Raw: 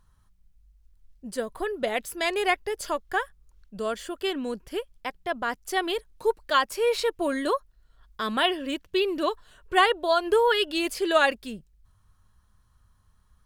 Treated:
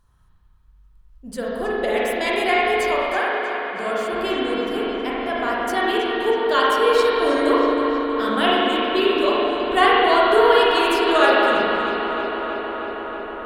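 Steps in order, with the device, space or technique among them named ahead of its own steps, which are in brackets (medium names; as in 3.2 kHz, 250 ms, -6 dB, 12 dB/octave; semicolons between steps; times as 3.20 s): dub delay into a spring reverb (filtered feedback delay 319 ms, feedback 82%, low-pass 4.9 kHz, level -8 dB; spring tank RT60 2.4 s, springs 35/42 ms, chirp 30 ms, DRR -6 dB); 3.19–4.13 s: high-pass 250 Hz 6 dB/octave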